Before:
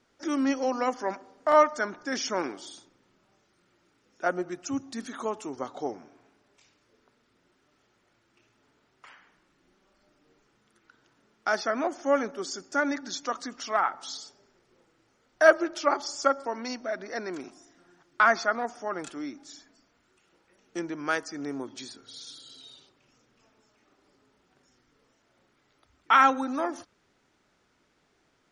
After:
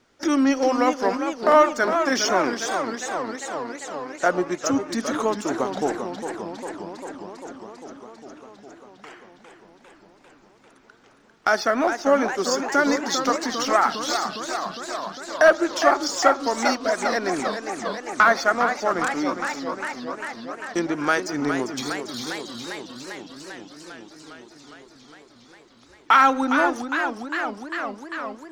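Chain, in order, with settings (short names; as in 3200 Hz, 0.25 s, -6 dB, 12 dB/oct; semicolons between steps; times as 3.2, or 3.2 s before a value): sample leveller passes 1; compressor 1.5:1, threshold -33 dBFS, peak gain reduction 8.5 dB; warbling echo 0.403 s, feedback 76%, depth 184 cents, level -8 dB; gain +8 dB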